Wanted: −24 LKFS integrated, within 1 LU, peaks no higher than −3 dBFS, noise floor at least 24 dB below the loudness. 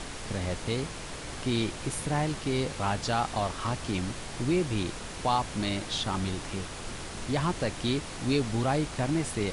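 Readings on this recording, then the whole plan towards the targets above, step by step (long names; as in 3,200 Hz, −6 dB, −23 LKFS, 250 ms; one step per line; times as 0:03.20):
background noise floor −40 dBFS; target noise floor −55 dBFS; integrated loudness −31.0 LKFS; sample peak −14.0 dBFS; target loudness −24.0 LKFS
→ noise reduction from a noise print 15 dB
level +7 dB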